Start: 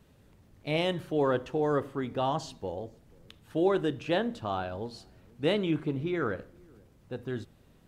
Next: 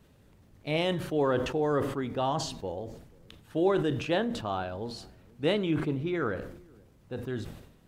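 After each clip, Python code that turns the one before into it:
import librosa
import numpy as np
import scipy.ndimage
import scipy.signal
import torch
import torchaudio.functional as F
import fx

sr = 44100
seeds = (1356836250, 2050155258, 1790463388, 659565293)

y = fx.sustainer(x, sr, db_per_s=68.0)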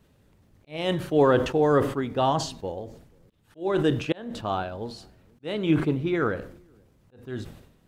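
y = fx.auto_swell(x, sr, attack_ms=300.0)
y = fx.upward_expand(y, sr, threshold_db=-42.0, expansion=1.5)
y = y * librosa.db_to_amplitude(8.0)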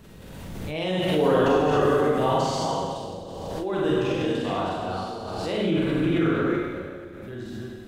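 y = fx.reverse_delay(x, sr, ms=226, wet_db=-1)
y = fx.rev_schroeder(y, sr, rt60_s=1.6, comb_ms=33, drr_db=-7.0)
y = fx.pre_swell(y, sr, db_per_s=26.0)
y = y * librosa.db_to_amplitude(-9.0)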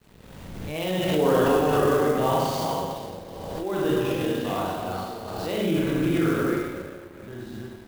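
y = np.sign(x) * np.maximum(np.abs(x) - 10.0 ** (-47.5 / 20.0), 0.0)
y = fx.clock_jitter(y, sr, seeds[0], jitter_ms=0.022)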